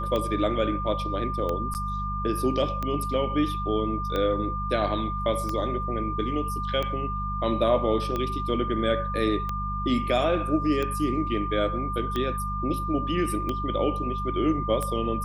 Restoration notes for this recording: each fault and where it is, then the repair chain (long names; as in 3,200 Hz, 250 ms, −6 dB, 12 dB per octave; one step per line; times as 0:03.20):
mains hum 50 Hz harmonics 4 −32 dBFS
scratch tick 45 rpm −16 dBFS
whistle 1,200 Hz −30 dBFS
0:01.74–0:01.75: drop-out 9 ms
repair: click removal
hum removal 50 Hz, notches 4
notch filter 1,200 Hz, Q 30
repair the gap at 0:01.74, 9 ms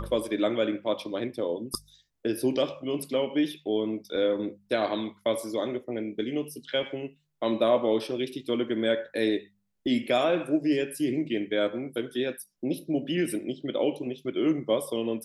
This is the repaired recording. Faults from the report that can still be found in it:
none of them is left